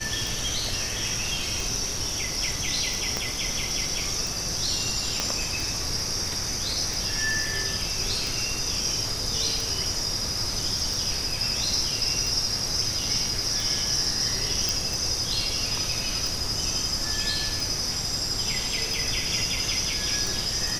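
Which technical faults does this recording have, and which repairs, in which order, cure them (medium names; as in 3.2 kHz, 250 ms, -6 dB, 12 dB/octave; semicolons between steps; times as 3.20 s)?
tick 45 rpm
3.17 s: pop -12 dBFS
5.20 s: pop -10 dBFS
14.69 s: pop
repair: de-click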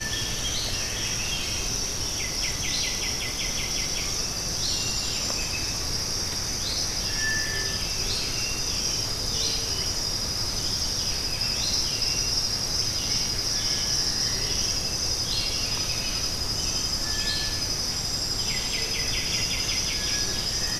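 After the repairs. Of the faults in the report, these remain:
3.17 s: pop
5.20 s: pop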